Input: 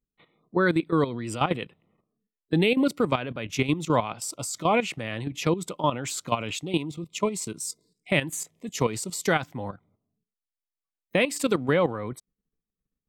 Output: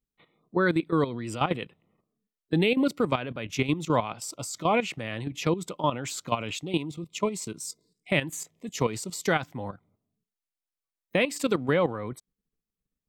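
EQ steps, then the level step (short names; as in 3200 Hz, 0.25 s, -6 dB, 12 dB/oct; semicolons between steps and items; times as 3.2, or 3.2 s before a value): dynamic EQ 9800 Hz, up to -6 dB, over -51 dBFS, Q 2.1; -1.5 dB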